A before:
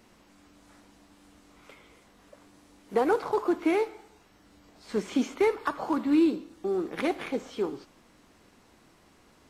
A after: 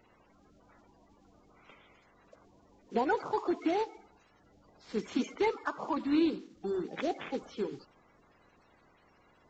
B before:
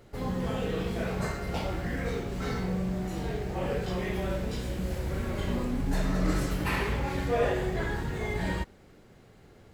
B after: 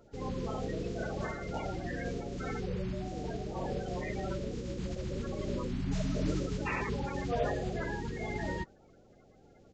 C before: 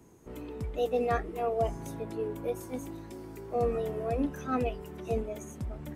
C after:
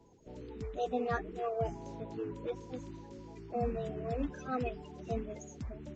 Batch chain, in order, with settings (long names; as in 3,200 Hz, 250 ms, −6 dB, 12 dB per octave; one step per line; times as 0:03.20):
spectral magnitudes quantised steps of 30 dB
downsampling to 16,000 Hz
level −4.5 dB